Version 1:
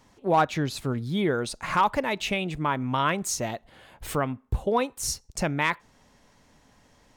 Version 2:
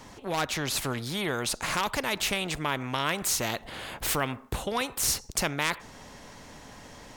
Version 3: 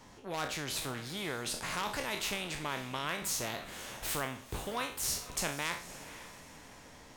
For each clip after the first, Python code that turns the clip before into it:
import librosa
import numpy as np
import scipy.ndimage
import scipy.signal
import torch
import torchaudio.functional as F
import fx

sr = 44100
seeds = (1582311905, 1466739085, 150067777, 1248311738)

y1 = fx.rider(x, sr, range_db=10, speed_s=0.5)
y1 = fx.spectral_comp(y1, sr, ratio=2.0)
y2 = fx.spec_trails(y1, sr, decay_s=0.42)
y2 = fx.echo_diffused(y2, sr, ms=520, feedback_pct=41, wet_db=-13.5)
y2 = y2 * 10.0 ** (-9.0 / 20.0)